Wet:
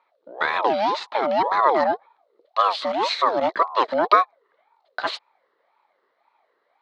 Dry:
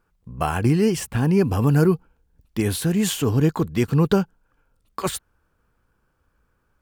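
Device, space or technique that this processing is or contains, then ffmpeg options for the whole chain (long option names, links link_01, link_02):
voice changer toy: -filter_complex "[0:a]asettb=1/sr,asplit=3[link_01][link_02][link_03];[link_01]atrim=end=0.624[link_04];[link_02]atrim=start=0.62:end=1.81,asetpts=PTS-STARTPTS,afade=type=in:duration=0.004:curve=qsin,afade=type=out:start_time=1.186:duration=0.004:curve=qsin,lowpass=8700[link_05];[link_03]atrim=start=1.806[link_06];[link_04][link_05]acrossfade=duration=0.004:curve1=hsin:curve2=qsin[link_07];[link_07][link_06]acrossfade=duration=0.004:curve1=qsin:curve2=hsin,aeval=exprs='val(0)*sin(2*PI*660*n/s+660*0.4/1.9*sin(2*PI*1.9*n/s))':channel_layout=same,highpass=540,equalizer=frequency=760:width_type=q:width=4:gain=-4,equalizer=frequency=1200:width_type=q:width=4:gain=6,equalizer=frequency=2600:width_type=q:width=4:gain=-3,equalizer=frequency=4100:width_type=q:width=4:gain=9,lowpass=frequency=4200:width=0.5412,lowpass=frequency=4200:width=1.3066,volume=4.5dB"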